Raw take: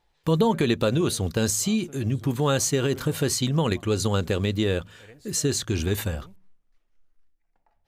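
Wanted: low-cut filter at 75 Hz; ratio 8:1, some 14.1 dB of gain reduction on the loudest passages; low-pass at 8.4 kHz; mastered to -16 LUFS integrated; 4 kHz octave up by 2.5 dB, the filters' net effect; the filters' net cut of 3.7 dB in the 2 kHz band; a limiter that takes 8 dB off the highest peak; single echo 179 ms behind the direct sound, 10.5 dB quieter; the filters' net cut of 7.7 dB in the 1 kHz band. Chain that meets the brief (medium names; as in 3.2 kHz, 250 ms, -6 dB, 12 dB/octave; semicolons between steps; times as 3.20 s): high-pass 75 Hz; low-pass 8.4 kHz; peaking EQ 1 kHz -9 dB; peaking EQ 2 kHz -3.5 dB; peaking EQ 4 kHz +4.5 dB; compression 8:1, threshold -34 dBFS; peak limiter -29 dBFS; delay 179 ms -10.5 dB; trim +23.5 dB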